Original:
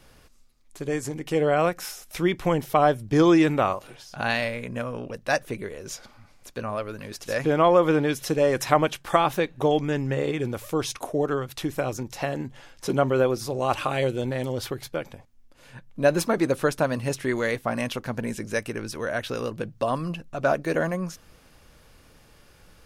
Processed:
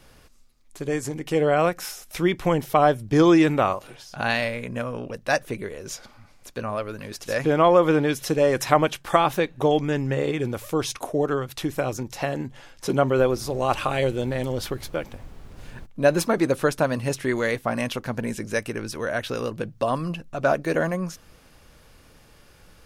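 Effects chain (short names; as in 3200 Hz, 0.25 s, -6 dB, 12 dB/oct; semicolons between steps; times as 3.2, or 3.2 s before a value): 13.17–15.85 added noise brown -41 dBFS; gain +1.5 dB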